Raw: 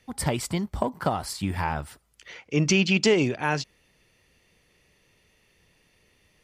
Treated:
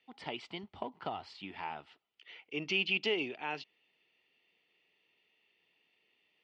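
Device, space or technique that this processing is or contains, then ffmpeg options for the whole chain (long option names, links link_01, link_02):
phone earpiece: -filter_complex "[0:a]highpass=390,equalizer=frequency=550:width_type=q:width=4:gain=-9,equalizer=frequency=1100:width_type=q:width=4:gain=-6,equalizer=frequency=1600:width_type=q:width=4:gain=-8,equalizer=frequency=2900:width_type=q:width=4:gain=6,lowpass=frequency=3800:width=0.5412,lowpass=frequency=3800:width=1.3066,asettb=1/sr,asplit=3[link_01][link_02][link_03];[link_01]atrim=end=0.634[link_04];[link_02]atrim=start=0.63:end=1.35,asetpts=PTS-STARTPTS,afade=type=in:duration=0.004:curve=qsin,afade=type=out:start_time=0.716:duration=0.004:curve=qsin,equalizer=frequency=90:width_type=o:width=0.9:gain=13.5[link_05];[link_03]atrim=start=1.346[link_06];[link_04][link_05]acrossfade=duration=0.004:curve1=hsin:curve2=qsin[link_07];[link_07][link_06]acrossfade=duration=0.004:curve1=qsin:curve2=hsin,volume=-8.5dB"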